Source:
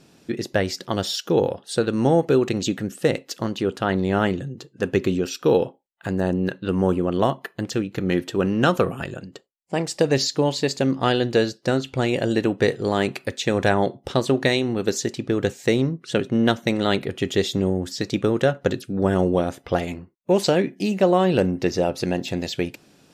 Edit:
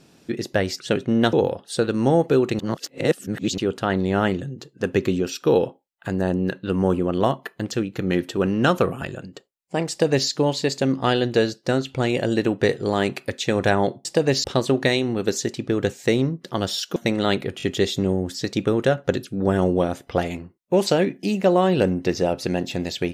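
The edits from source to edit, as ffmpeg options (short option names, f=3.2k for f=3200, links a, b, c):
-filter_complex "[0:a]asplit=11[a][b][c][d][e][f][g][h][i][j][k];[a]atrim=end=0.802[l];[b]atrim=start=16.038:end=16.572[m];[c]atrim=start=1.318:end=2.582[n];[d]atrim=start=2.578:end=3.572,asetpts=PTS-STARTPTS,areverse[o];[e]atrim=start=3.568:end=14.042[p];[f]atrim=start=9.888:end=10.282[q];[g]atrim=start=14.038:end=16.042[r];[h]atrim=start=0.798:end=1.322[s];[i]atrim=start=16.568:end=17.212[t];[j]atrim=start=17.188:end=17.212[u];[k]atrim=start=17.188[v];[l][m]acrossfade=d=0.004:c1=hsin:c2=hsin[w];[w][n]acrossfade=d=0.004:c1=hsin:c2=hsin[x];[x][o]acrossfade=d=0.004:c1=hsin:c2=hsin[y];[y][p]acrossfade=d=0.004:c1=hsin:c2=hsin[z];[z][q]acrossfade=d=0.004:c1=hsin:c2=hsin[aa];[aa][r]acrossfade=d=0.004:c1=hsin:c2=hsin[ab];[ab][s]acrossfade=d=0.004:c1=hsin:c2=hsin[ac];[ac][t]acrossfade=d=0.004:c1=hsin:c2=hsin[ad];[ad][u]acrossfade=d=0.004:c1=hsin:c2=hsin[ae];[ae][v]acrossfade=d=0.004:c1=hsin:c2=hsin"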